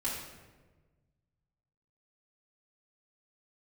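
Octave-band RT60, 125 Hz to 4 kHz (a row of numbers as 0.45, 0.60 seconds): 2.3, 1.7, 1.5, 1.1, 1.0, 0.80 seconds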